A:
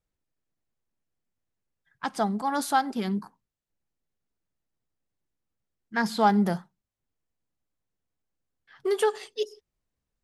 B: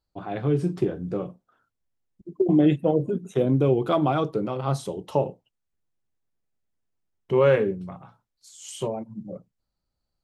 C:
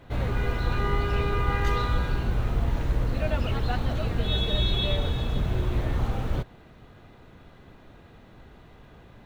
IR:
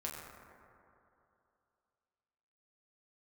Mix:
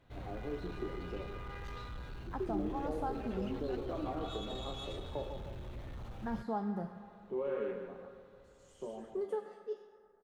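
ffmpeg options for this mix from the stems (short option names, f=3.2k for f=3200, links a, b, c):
-filter_complex "[0:a]adelay=300,volume=-2.5dB,asplit=2[a][b];[b]volume=-21.5dB[c];[1:a]highpass=f=210:w=0.5412,highpass=f=210:w=1.3066,volume=-12dB,asplit=3[d][e][f];[e]volume=-11dB[g];[f]volume=-13dB[h];[2:a]highshelf=f=3.7k:g=7.5,asoftclip=type=tanh:threshold=-22.5dB,volume=-16.5dB[i];[a][d]amix=inputs=2:normalize=0,lowpass=1k,acompressor=threshold=-45dB:ratio=2,volume=0dB[j];[3:a]atrim=start_sample=2205[k];[c][g]amix=inputs=2:normalize=0[l];[l][k]afir=irnorm=-1:irlink=0[m];[h]aecho=0:1:150|300|450|600|750|900:1|0.43|0.185|0.0795|0.0342|0.0147[n];[i][j][m][n]amix=inputs=4:normalize=0,highshelf=f=8.4k:g=-8"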